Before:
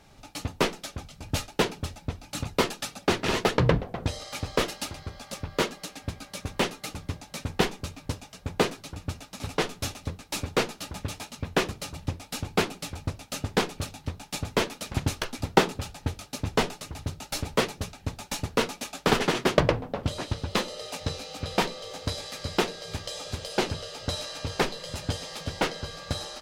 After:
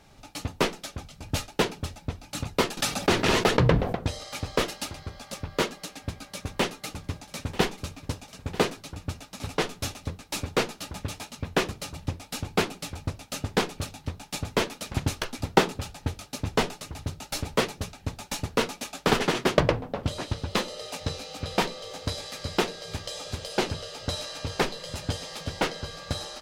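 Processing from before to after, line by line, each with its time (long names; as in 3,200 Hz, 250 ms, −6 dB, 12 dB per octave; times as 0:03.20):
0:02.77–0:03.95: envelope flattener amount 50%
0:06.10–0:08.78: single-tap delay 940 ms −17.5 dB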